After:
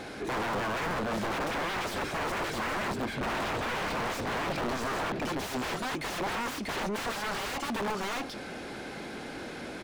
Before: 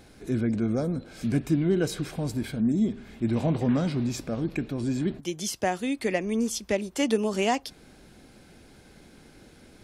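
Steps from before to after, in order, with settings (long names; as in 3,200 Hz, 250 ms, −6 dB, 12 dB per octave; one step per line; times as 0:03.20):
single-tap delay 640 ms −5.5 dB
wrap-around overflow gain 28 dB
mid-hump overdrive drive 25 dB, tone 1,600 Hz, clips at −28 dBFS
level +2 dB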